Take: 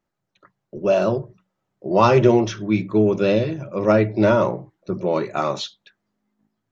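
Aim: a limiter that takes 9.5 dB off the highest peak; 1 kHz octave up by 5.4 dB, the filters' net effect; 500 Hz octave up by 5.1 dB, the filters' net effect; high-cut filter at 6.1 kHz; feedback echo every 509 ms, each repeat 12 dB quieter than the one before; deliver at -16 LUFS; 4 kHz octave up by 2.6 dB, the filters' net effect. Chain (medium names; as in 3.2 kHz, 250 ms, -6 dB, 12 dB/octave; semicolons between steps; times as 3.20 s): low-pass 6.1 kHz; peaking EQ 500 Hz +5 dB; peaking EQ 1 kHz +5 dB; peaking EQ 4 kHz +3.5 dB; peak limiter -7.5 dBFS; feedback delay 509 ms, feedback 25%, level -12 dB; trim +3 dB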